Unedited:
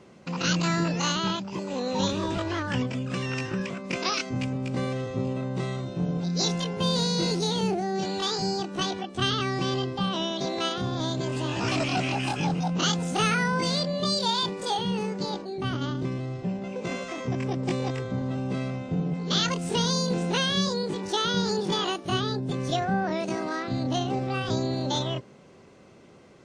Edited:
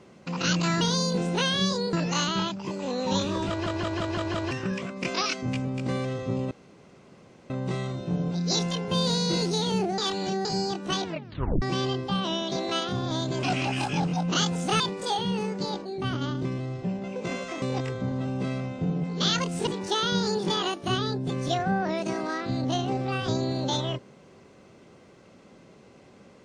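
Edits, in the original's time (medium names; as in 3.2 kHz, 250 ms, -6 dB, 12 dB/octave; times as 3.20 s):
2.37 s: stutter in place 0.17 s, 6 plays
5.39 s: insert room tone 0.99 s
7.87–8.34 s: reverse
8.94 s: tape stop 0.57 s
11.32–11.90 s: delete
13.27–14.40 s: delete
17.22–17.72 s: delete
19.77–20.89 s: move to 0.81 s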